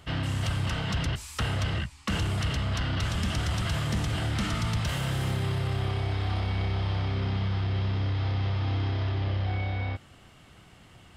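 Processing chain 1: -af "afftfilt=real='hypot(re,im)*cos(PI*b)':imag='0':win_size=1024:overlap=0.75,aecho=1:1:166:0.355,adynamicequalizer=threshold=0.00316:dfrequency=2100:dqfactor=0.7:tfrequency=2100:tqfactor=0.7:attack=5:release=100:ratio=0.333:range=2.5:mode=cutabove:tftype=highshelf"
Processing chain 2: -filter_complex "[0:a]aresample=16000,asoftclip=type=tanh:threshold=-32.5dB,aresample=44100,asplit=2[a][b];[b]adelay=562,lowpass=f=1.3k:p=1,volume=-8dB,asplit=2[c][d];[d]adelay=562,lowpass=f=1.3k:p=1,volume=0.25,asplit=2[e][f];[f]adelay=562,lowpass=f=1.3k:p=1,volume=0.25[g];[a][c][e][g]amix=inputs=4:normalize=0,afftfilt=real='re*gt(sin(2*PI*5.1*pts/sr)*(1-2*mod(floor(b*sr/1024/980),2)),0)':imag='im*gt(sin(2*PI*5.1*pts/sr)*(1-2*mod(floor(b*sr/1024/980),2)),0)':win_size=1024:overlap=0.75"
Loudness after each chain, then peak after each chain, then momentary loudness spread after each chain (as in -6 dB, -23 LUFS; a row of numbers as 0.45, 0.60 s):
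-37.0, -38.5 LUFS; -14.5, -26.5 dBFS; 5, 6 LU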